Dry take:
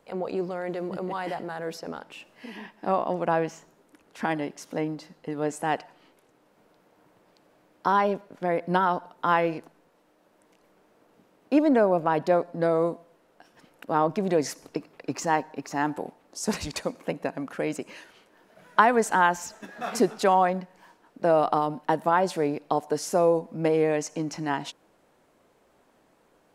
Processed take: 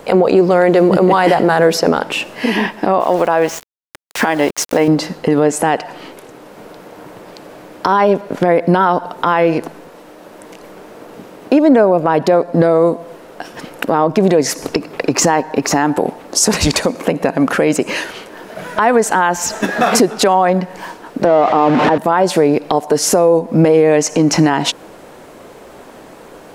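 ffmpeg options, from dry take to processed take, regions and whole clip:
-filter_complex "[0:a]asettb=1/sr,asplit=3[a][b][c];[a]atrim=end=3.004[d];[b]atrim=start=3:end=4.88,asetpts=PTS-STARTPTS,afade=t=in:d=0.004:c=qsin,afade=t=out:st=1.876:d=0.004:c=qsin,highpass=43,equalizer=f=180:t=o:w=1.9:g=-9.5,aeval=exprs='val(0)*gte(abs(val(0)),0.00447)':c=same[e];[c]atrim=start=4.876[f];[d][e]acrossfade=d=0.004:c1=hsin:c2=qsin[g];[g][f]acrossfade=d=0.004:c1=qsin:c2=hsin,asettb=1/sr,asplit=3[h][i][j];[h]atrim=end=21.254[k];[i]atrim=start=21.25:end=21.98,asetpts=PTS-STARTPTS,afade=t=in:d=0.004:c=qsin,afade=t=out:st=0.726:d=0.004:c=qsin,aeval=exprs='val(0)+0.5*0.0531*sgn(val(0))':c=same,highpass=120,lowpass=2.6k[l];[j]atrim=start=21.976[m];[k][l]acrossfade=d=0.004:c1=hsin:c2=qsin[n];[n][m]acrossfade=d=0.004:c1=qsin:c2=hsin,equalizer=f=440:w=1.5:g=2.5,acompressor=threshold=-31dB:ratio=6,alimiter=level_in=25.5dB:limit=-1dB:release=50:level=0:latency=1,volume=-1dB"

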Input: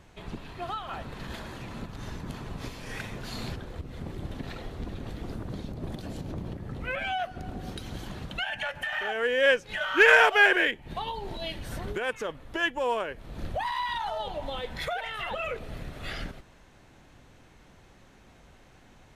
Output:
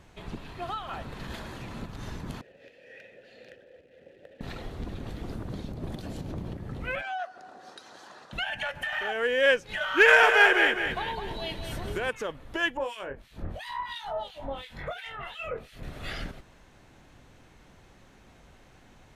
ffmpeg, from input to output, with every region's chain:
-filter_complex "[0:a]asettb=1/sr,asplit=3[a][b][c];[a]atrim=end=2.414[d];[b]atrim=start=2.41:end=4.41,asetpts=PTS-STARTPTS,afade=t=in:d=0.004:c=qsin,afade=t=out:st=1.996:d=0.004:c=qsin,aeval=exprs='(mod(17.8*val(0)+1,2)-1)/17.8':c=same,acrusher=bits=9:dc=4:mix=0:aa=0.000001,asplit=3[e][f][g];[e]bandpass=f=530:t=q:w=8,volume=0dB[h];[f]bandpass=f=1.84k:t=q:w=8,volume=-6dB[i];[g]bandpass=f=2.48k:t=q:w=8,volume=-9dB[j];[h][i][j]amix=inputs=3:normalize=0[k];[c]atrim=start=4.406[l];[d][k]acrossfade=d=0.004:c1=hsin:c2=qsin[m];[m][l]acrossfade=d=0.004:c1=qsin:c2=hsin,asettb=1/sr,asplit=3[n][o][p];[n]atrim=end=7.014[q];[o]atrim=start=7.01:end=8.33,asetpts=PTS-STARTPTS,afade=t=in:d=0.004:c=qsin,afade=t=out:st=1.316:d=0.004:c=qsin,highpass=710,lowpass=6.3k,equalizer=f=3k:t=o:w=0.63:g=-10.5,bandreject=f=2.2k:w=7.3[r];[p]atrim=start=8.326[s];[q][r]acrossfade=d=0.004:c1=hsin:c2=qsin[t];[t][s]acrossfade=d=0.004:c1=qsin:c2=hsin,asettb=1/sr,asplit=3[u][v][w];[u]atrim=end=10.024[x];[v]atrim=start=10.02:end=12.09,asetpts=PTS-STARTPTS,afade=t=in:d=0.004:c=qsin,afade=t=out:st=2.066:d=0.004:c=qsin,aecho=1:1:208|416|624|832:0.447|0.17|0.0645|0.0245,atrim=end_sample=91287,asoftclip=type=hard:threshold=-9dB[y];[w]atrim=start=12.086[z];[x][y]acrossfade=d=0.004:c1=hsin:c2=qsin[aa];[aa][z]acrossfade=d=0.004:c1=qsin:c2=hsin,asettb=1/sr,asplit=3[ab][ac][ad];[ab]atrim=end=12.774[ae];[ac]atrim=start=12.77:end=15.83,asetpts=PTS-STARTPTS,afade=t=in:d=0.004:c=qsin,afade=t=out:st=3.056:d=0.004:c=qsin,acrossover=split=1800[af][ag];[af]aeval=exprs='val(0)*(1-1/2+1/2*cos(2*PI*2.9*n/s))':c=same[ah];[ag]aeval=exprs='val(0)*(1-1/2-1/2*cos(2*PI*2.9*n/s))':c=same[ai];[ah][ai]amix=inputs=2:normalize=0,asplit=2[aj][ak];[ak]adelay=22,volume=-6dB[al];[aj][al]amix=inputs=2:normalize=0,atrim=end_sample=134946[am];[ad]atrim=start=15.826[an];[ae][am]acrossfade=d=0.004:c1=hsin:c2=qsin[ao];[ao][an]acrossfade=d=0.004:c1=qsin:c2=hsin"

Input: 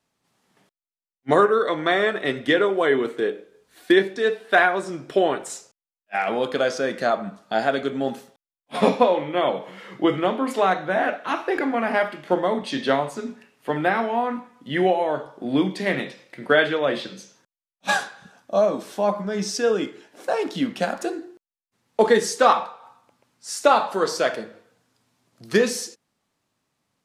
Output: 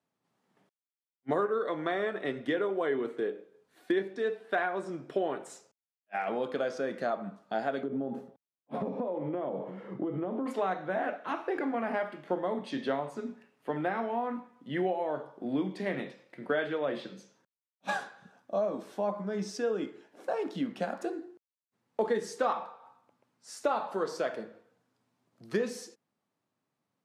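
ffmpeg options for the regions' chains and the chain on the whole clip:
-filter_complex "[0:a]asettb=1/sr,asplit=3[a][b][c];[a]atrim=end=7.834[d];[b]atrim=start=7.83:end=10.46,asetpts=PTS-STARTPTS,afade=t=in:d=0.004:c=qsin,afade=t=out:st=2.626:d=0.004:c=qsin,tiltshelf=f=1.2k:g=10,acompressor=threshold=-22dB:ratio=10:attack=3.2:release=140:knee=1:detection=peak[e];[c]atrim=start=10.456[f];[d][e]acrossfade=d=0.004:c1=hsin:c2=qsin[g];[g][f]acrossfade=d=0.004:c1=qsin:c2=hsin,highpass=120,highshelf=f=2.1k:g=-10,acompressor=threshold=-23dB:ratio=2,volume=-6dB"

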